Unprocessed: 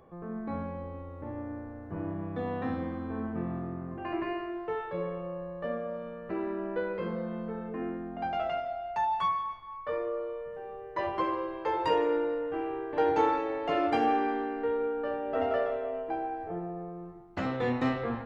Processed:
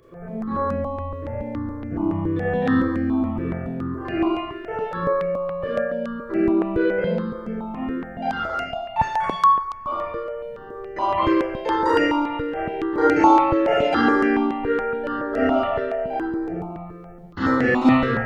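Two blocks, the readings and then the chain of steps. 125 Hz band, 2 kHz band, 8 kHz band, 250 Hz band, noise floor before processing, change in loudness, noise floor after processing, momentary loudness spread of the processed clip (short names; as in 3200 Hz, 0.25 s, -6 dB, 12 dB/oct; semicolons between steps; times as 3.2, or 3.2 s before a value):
+10.0 dB, +13.0 dB, n/a, +13.0 dB, -43 dBFS, +10.5 dB, -37 dBFS, 13 LU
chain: Schroeder reverb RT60 0.66 s, combs from 27 ms, DRR -7 dB; dynamic EQ 1500 Hz, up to +4 dB, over -36 dBFS, Q 1.5; step phaser 7.1 Hz 210–3600 Hz; gain +5.5 dB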